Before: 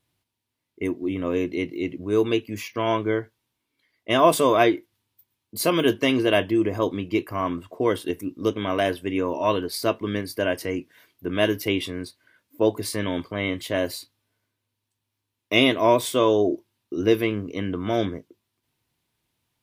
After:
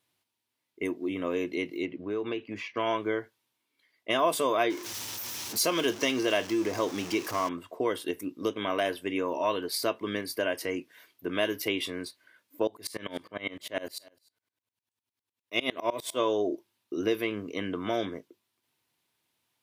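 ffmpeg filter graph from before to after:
-filter_complex "[0:a]asettb=1/sr,asplit=3[a][b][c];[a]atrim=end=1.854[d];[b]atrim=start=1.85:end=2.77,asetpts=PTS-STARTPTS,afade=t=in:d=0.004:c=qsin,afade=t=out:st=0.916:d=0.004:c=qsin,lowpass=2.9k,acompressor=threshold=-24dB:ratio=5:attack=3.2:release=140:knee=1:detection=peak[e];[c]atrim=start=2.766[f];[d][e]acrossfade=d=0.004:c1=hsin:c2=qsin[g];[g][f]acrossfade=d=0.004:c1=qsin:c2=hsin,asettb=1/sr,asplit=3[h][i][j];[h]atrim=end=4.704[k];[i]atrim=start=4.7:end=7.49,asetpts=PTS-STARTPTS,afade=t=in:d=0.004:c=qsin,afade=t=out:st=2.786:d=0.004:c=qsin,aeval=exprs='val(0)+0.5*0.0251*sgn(val(0))':c=same,equalizer=f=5.8k:w=2.4:g=10[l];[j]atrim=start=7.486[m];[k][l]acrossfade=d=0.004:c1=hsin:c2=qsin[n];[n][m]acrossfade=d=0.004:c1=qsin:c2=hsin,asettb=1/sr,asplit=3[o][p][q];[o]atrim=end=12.674[r];[p]atrim=start=12.67:end=16.2,asetpts=PTS-STARTPTS,afade=t=in:d=0.004:c=qsin,afade=t=out:st=3.526:d=0.004:c=qsin,aecho=1:1:282:0.0668,atrim=end_sample=155673,aeval=exprs='val(0)*pow(10,-24*if(lt(mod(-9.9*n/s,1),2*abs(-9.9)/1000),1-mod(-9.9*n/s,1)/(2*abs(-9.9)/1000),(mod(-9.9*n/s,1)-2*abs(-9.9)/1000)/(1-2*abs(-9.9)/1000))/20)':c=same[s];[q]atrim=start=16.196[t];[r][s]acrossfade=d=0.004:c1=hsin:c2=qsin[u];[u][t]acrossfade=d=0.004:c1=qsin:c2=hsin,highpass=f=400:p=1,acompressor=threshold=-27dB:ratio=2"

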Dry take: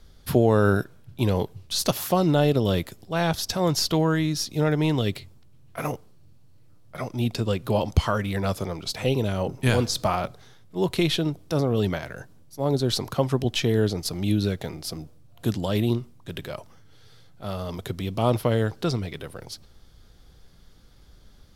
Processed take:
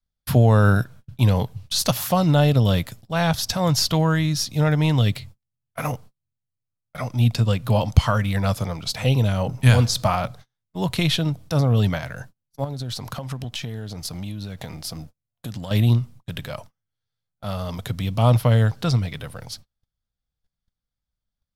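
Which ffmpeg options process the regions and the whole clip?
-filter_complex "[0:a]asettb=1/sr,asplit=3[a][b][c];[a]atrim=end=12.644[d];[b]atrim=start=12.64:end=15.71,asetpts=PTS-STARTPTS,afade=t=in:d=0.004:c=qsin,afade=t=out:st=3.066:d=0.004:c=qsin,acompressor=threshold=-29dB:ratio=10:attack=3.2:release=140:knee=1:detection=peak,aeval=exprs='sgn(val(0))*max(abs(val(0))-0.00106,0)':c=same[e];[c]atrim=start=15.706[f];[d][e]acrossfade=d=0.004:c1=hsin:c2=qsin[g];[g][f]acrossfade=d=0.004:c1=qsin:c2=hsin,adynamicequalizer=threshold=0.0112:dfrequency=120:dqfactor=2.5:tfrequency=120:tqfactor=2.5:attack=5:release=100:ratio=0.375:range=3.5:mode=boostabove:tftype=bell,agate=range=-36dB:threshold=-42dB:ratio=16:detection=peak,equalizer=f=370:w=2.5:g=-12,volume=3.5dB"

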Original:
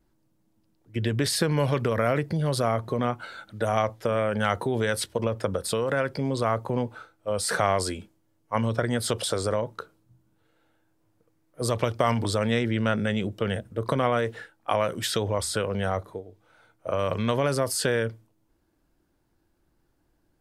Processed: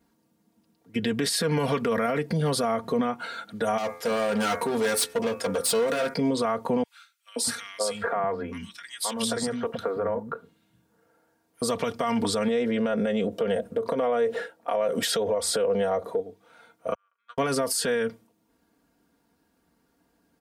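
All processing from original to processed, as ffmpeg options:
-filter_complex "[0:a]asettb=1/sr,asplit=3[a][b][c];[a]atrim=end=3.784[d];[b]atrim=start=3.78:end=6.14,asetpts=PTS-STARTPTS,afade=t=in:d=0.004:c=qsin,afade=t=out:st=2.356:d=0.004:c=qsin,bass=f=250:g=-4,treble=f=4k:g=6,bandreject=f=86.32:t=h:w=4,bandreject=f=172.64:t=h:w=4,bandreject=f=258.96:t=h:w=4,bandreject=f=345.28:t=h:w=4,bandreject=f=431.6:t=h:w=4,bandreject=f=517.92:t=h:w=4,bandreject=f=604.24:t=h:w=4,bandreject=f=690.56:t=h:w=4,bandreject=f=776.88:t=h:w=4,bandreject=f=863.2:t=h:w=4,bandreject=f=949.52:t=h:w=4,bandreject=f=1.03584k:t=h:w=4,bandreject=f=1.12216k:t=h:w=4,bandreject=f=1.20848k:t=h:w=4,bandreject=f=1.2948k:t=h:w=4,bandreject=f=1.38112k:t=h:w=4,bandreject=f=1.46744k:t=h:w=4,bandreject=f=1.55376k:t=h:w=4,bandreject=f=1.64008k:t=h:w=4,bandreject=f=1.7264k:t=h:w=4,bandreject=f=1.81272k:t=h:w=4,bandreject=f=1.89904k:t=h:w=4,bandreject=f=1.98536k:t=h:w=4,bandreject=f=2.07168k:t=h:w=4,bandreject=f=2.158k:t=h:w=4,bandreject=f=2.24432k:t=h:w=4,bandreject=f=2.33064k:t=h:w=4,bandreject=f=2.41696k:t=h:w=4,bandreject=f=2.50328k:t=h:w=4,bandreject=f=2.5896k:t=h:w=4,asoftclip=type=hard:threshold=-27dB[e];[c]atrim=start=6.136[f];[d][e]acrossfade=d=0.004:c1=hsin:c2=qsin[g];[g][f]acrossfade=d=0.004:c1=qsin:c2=hsin,asettb=1/sr,asplit=3[h][i][j];[h]atrim=end=6.834[k];[i]atrim=start=6.83:end=11.62,asetpts=PTS-STARTPTS,afade=t=in:d=0.004:c=qsin,afade=t=out:st=4.786:d=0.004:c=qsin,acompressor=threshold=-27dB:ratio=3:attack=3.2:release=140:knee=1:detection=peak,acrossover=split=250|1900[l][m][n];[m]adelay=530[o];[l]adelay=640[p];[p][o][n]amix=inputs=3:normalize=0,atrim=end_sample=211239[q];[j]atrim=start=11.616[r];[k][q]acrossfade=d=0.004:c1=hsin:c2=qsin[s];[s][r]acrossfade=d=0.004:c1=qsin:c2=hsin,asettb=1/sr,asplit=3[t][u][v];[t]atrim=end=12.484[w];[u]atrim=start=12.48:end=16.2,asetpts=PTS-STARTPTS,afade=t=in:d=0.004:c=qsin,afade=t=out:st=3.716:d=0.004:c=qsin,equalizer=f=550:t=o:w=0.94:g=12.5,acompressor=threshold=-26dB:ratio=4:attack=3.2:release=140:knee=1:detection=peak[x];[v]atrim=start=16.196[y];[w][x]acrossfade=d=0.004:c1=hsin:c2=qsin[z];[z][y]acrossfade=d=0.004:c1=qsin:c2=hsin,asettb=1/sr,asplit=3[aa][ab][ac];[aa]atrim=end=16.944[ad];[ab]atrim=start=16.94:end=17.38,asetpts=PTS-STARTPTS,afade=t=in:d=0.004:c=qsin,afade=t=out:st=0.436:d=0.004:c=qsin,agate=range=-51dB:threshold=-20dB:ratio=16:release=100:detection=peak,highpass=f=1.4k:t=q:w=7.5[ae];[ac]atrim=start=17.376[af];[ad][ae]acrossfade=d=0.004:c1=hsin:c2=qsin[ag];[ag][af]acrossfade=d=0.004:c1=qsin:c2=hsin,highpass=110,aecho=1:1:4.3:0.72,alimiter=limit=-20dB:level=0:latency=1:release=109,volume=3.5dB"

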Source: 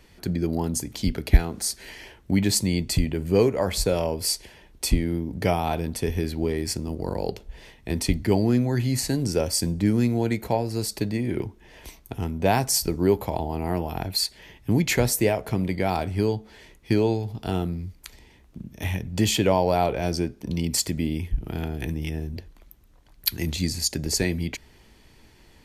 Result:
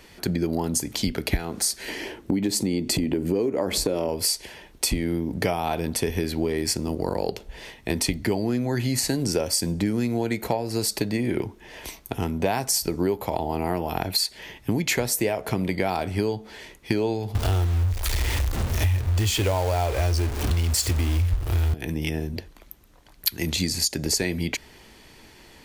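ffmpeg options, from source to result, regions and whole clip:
-filter_complex "[0:a]asettb=1/sr,asplit=3[a][b][c];[a]atrim=end=1.884[d];[b]atrim=start=1.88:end=4.09,asetpts=PTS-STARTPTS,afade=t=in:d=0.004:c=qsin,afade=t=out:st=2.206:d=0.004:c=qsin,equalizer=f=300:t=o:w=1.4:g=12.5,acompressor=threshold=-23dB:ratio=2:attack=3.2:release=140:knee=1:detection=peak[e];[c]atrim=start=4.086[f];[d][e]acrossfade=d=0.004:c1=hsin:c2=qsin[g];[g][f]acrossfade=d=0.004:c1=qsin:c2=hsin,asettb=1/sr,asplit=3[h][i][j];[h]atrim=end=17.354[k];[i]atrim=start=17.35:end=21.74,asetpts=PTS-STARTPTS,afade=t=in:d=0.004:c=qsin,afade=t=out:st=4.386:d=0.004:c=qsin,aeval=exprs='val(0)+0.5*0.0473*sgn(val(0))':c=same,acrusher=bits=4:mode=log:mix=0:aa=0.000001,lowshelf=f=120:t=q:w=3:g=11.5[l];[j]atrim=start=21.736[m];[k][l]acrossfade=d=0.004:c1=hsin:c2=qsin[n];[n][m]acrossfade=d=0.004:c1=qsin:c2=hsin,lowshelf=f=170:g=-9,acompressor=threshold=-28dB:ratio=6,volume=7.5dB"

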